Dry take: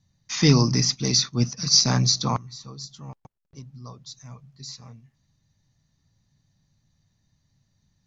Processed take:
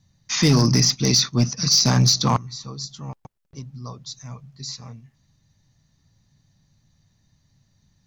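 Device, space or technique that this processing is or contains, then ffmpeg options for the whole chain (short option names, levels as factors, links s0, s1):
limiter into clipper: -af "alimiter=limit=0.251:level=0:latency=1:release=35,asoftclip=type=hard:threshold=0.168,volume=1.88"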